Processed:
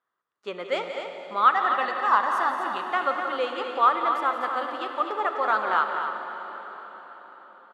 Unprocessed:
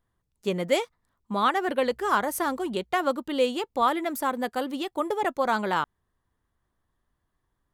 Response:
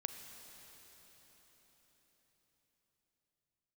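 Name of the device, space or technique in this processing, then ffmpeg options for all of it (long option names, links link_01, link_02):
station announcement: -filter_complex "[0:a]asettb=1/sr,asplit=3[link_01][link_02][link_03];[link_01]atrim=end=1.534[link_04];[link_02]atrim=start=1.53:end=2.83,asetpts=PTS-STARTPTS,afade=type=in:duration=0.004:curve=qsin,afade=type=out:start_time=1.296:duration=0.004:curve=qsin,aecho=1:1:1.1:0.66,atrim=end_sample=57330[link_05];[link_03]atrim=start=2.826[link_06];[link_04][link_05]acrossfade=duration=0.004:curve1=hsin:curve2=qsin[link_07];[link_07][link_06]acrossfade=duration=0.004:curve1=qsin:curve2=hsin,highpass=480,lowpass=3700,equalizer=frequency=1300:width_type=o:width=0.39:gain=11,aecho=1:1:177.8|250.7:0.282|0.398[link_08];[1:a]atrim=start_sample=2205[link_09];[link_08][link_09]afir=irnorm=-1:irlink=0"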